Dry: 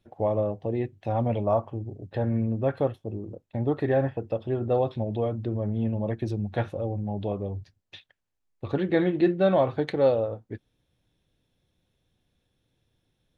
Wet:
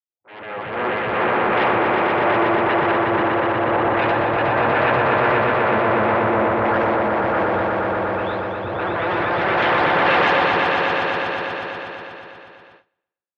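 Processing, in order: spectral delay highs late, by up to 0.773 s; limiter -21.5 dBFS, peak gain reduction 9.5 dB; sine folder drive 12 dB, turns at -21.5 dBFS; HPF 62 Hz; high shelf 3300 Hz -9.5 dB; on a send: swelling echo 0.121 s, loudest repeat 5, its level -4 dB; on the sum: AGC gain up to 6 dB; three-band isolator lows -12 dB, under 370 Hz, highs -18 dB, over 3600 Hz; gate with hold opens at -22 dBFS; transient shaper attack -8 dB, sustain +3 dB; three-band expander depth 100%

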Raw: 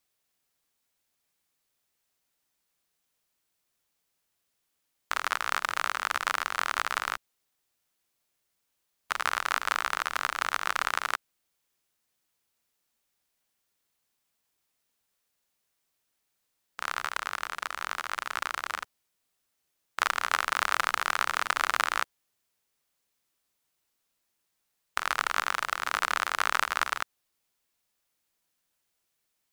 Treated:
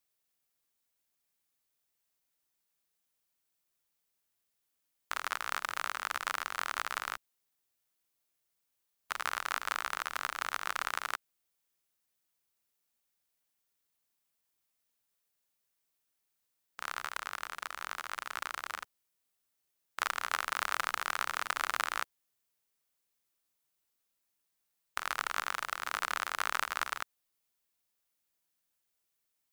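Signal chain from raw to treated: high shelf 10000 Hz +6 dB; gain -6.5 dB

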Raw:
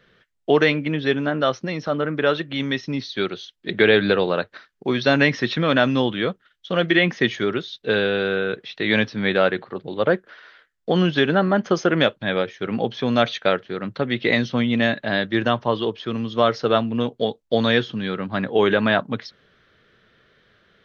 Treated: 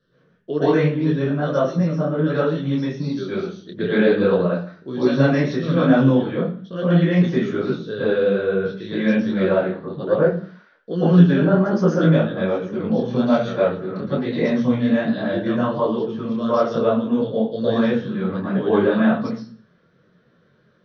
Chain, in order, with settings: reverb RT60 0.45 s, pre-delay 0.106 s, DRR -11 dB; detuned doubles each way 41 cents; gain -14.5 dB

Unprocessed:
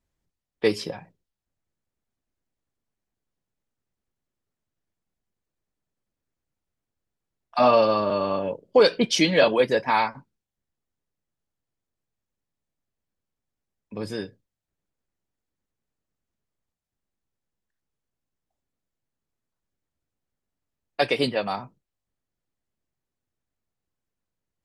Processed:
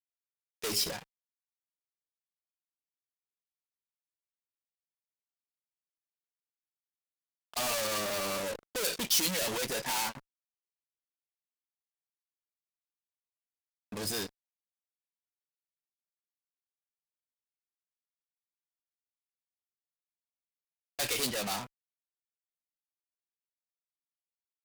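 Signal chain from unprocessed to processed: fuzz box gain 36 dB, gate -44 dBFS; pre-emphasis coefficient 0.8; gain -7.5 dB

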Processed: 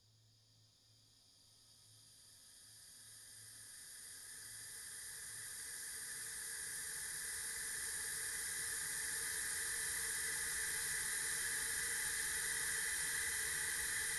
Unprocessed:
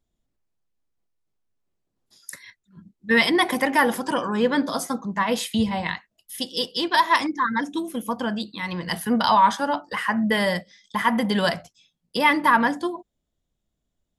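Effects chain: Paulstretch 23×, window 1.00 s, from 1.78; frequency shift -110 Hz; gain +2.5 dB

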